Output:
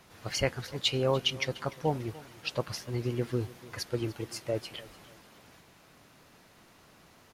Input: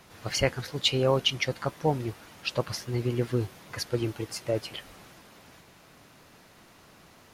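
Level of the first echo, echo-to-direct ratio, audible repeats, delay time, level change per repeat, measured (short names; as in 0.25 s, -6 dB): -19.5 dB, -19.0 dB, 2, 0.295 s, -9.0 dB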